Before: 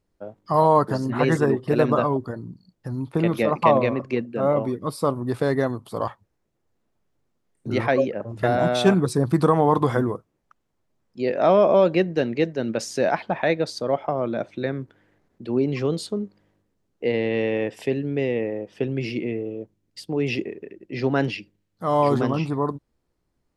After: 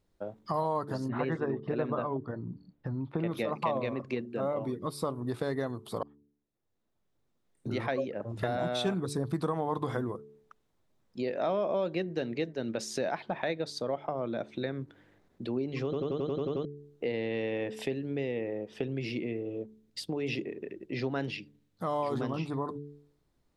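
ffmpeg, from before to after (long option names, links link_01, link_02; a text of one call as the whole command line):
ffmpeg -i in.wav -filter_complex "[0:a]asettb=1/sr,asplit=3[link_01][link_02][link_03];[link_01]atrim=end=1.084[link_04];[link_02]atrim=start=1.08:end=3.31,asetpts=PTS-STARTPTS,afade=type=in:duration=0.004:curve=qsin,afade=type=out:start_time=2.226:duration=0.004:curve=qsin,lowpass=2500[link_05];[link_03]atrim=start=3.306[link_06];[link_04][link_05]acrossfade=duration=0.004:curve1=hsin:curve2=qsin[link_07];[link_07][link_06]acrossfade=duration=0.004:curve1=qsin:curve2=hsin,asplit=11[link_08][link_09][link_10][link_11][link_12][link_13][link_14][link_15][link_16][link_17][link_18];[link_08]atrim=end=6.03,asetpts=PTS-STARTPTS,afade=type=out:start_time=6.026:duration=0.004:curve=hsin[link_19];[link_09]atrim=start=6.03:end=15.932,asetpts=PTS-STARTPTS,afade=type=in:duration=1.92[link_20];[link_10]atrim=start=15.838:end=15.932[link_21];[link_11]atrim=start=15.838:end=15.932[link_22];[link_12]atrim=start=15.838:end=15.932[link_23];[link_13]atrim=start=15.838:end=15.932[link_24];[link_14]atrim=start=15.838:end=15.932[link_25];[link_15]atrim=start=15.838:end=15.932[link_26];[link_16]atrim=start=15.838:end=15.932[link_27];[link_17]atrim=start=15.838:end=15.932[link_28];[link_18]atrim=start=16.648[link_29];[link_19][link_20]concat=n=2:v=0:a=1[link_30];[link_30][link_21]acrossfade=duration=0.004:curve1=hsin:curve2=hsin[link_31];[link_31][link_22]acrossfade=duration=0.004:curve1=hsin:curve2=hsin[link_32];[link_32][link_23]acrossfade=duration=0.004:curve1=hsin:curve2=hsin[link_33];[link_33][link_24]acrossfade=duration=0.004:curve1=hsin:curve2=hsin[link_34];[link_34][link_25]acrossfade=duration=0.004:curve1=hsin:curve2=hsin[link_35];[link_35][link_26]acrossfade=duration=0.004:curve1=hsin:curve2=hsin[link_36];[link_36][link_27]acrossfade=duration=0.004:curve1=hsin:curve2=hsin[link_37];[link_37][link_28]acrossfade=duration=0.004:curve1=hsin:curve2=hsin[link_38];[link_38][link_29]acrossfade=duration=0.004:curve1=hsin:curve2=hsin,equalizer=frequency=3700:width_type=o:width=0.26:gain=5.5,bandreject=frequency=72.48:width_type=h:width=4,bandreject=frequency=144.96:width_type=h:width=4,bandreject=frequency=217.44:width_type=h:width=4,bandreject=frequency=289.92:width_type=h:width=4,bandreject=frequency=362.4:width_type=h:width=4,bandreject=frequency=434.88:width_type=h:width=4,acompressor=threshold=-34dB:ratio=2.5" out.wav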